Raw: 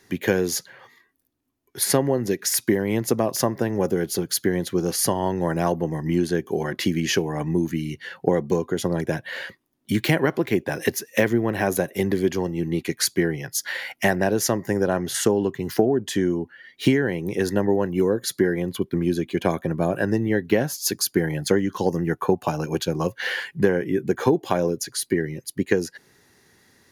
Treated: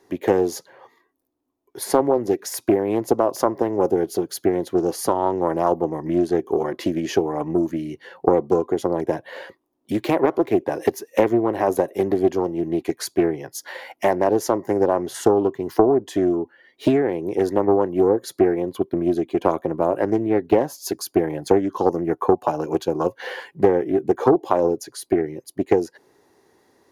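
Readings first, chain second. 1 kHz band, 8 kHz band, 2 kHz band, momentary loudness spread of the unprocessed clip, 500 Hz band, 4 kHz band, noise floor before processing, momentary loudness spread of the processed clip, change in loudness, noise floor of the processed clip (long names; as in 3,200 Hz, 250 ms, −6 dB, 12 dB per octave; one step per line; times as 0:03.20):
+6.0 dB, −7.5 dB, −7.0 dB, 5 LU, +4.0 dB, −7.5 dB, −63 dBFS, 7 LU, +2.0 dB, −66 dBFS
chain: flat-topped bell 560 Hz +12 dB 2.3 octaves
highs frequency-modulated by the lows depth 0.43 ms
level −7.5 dB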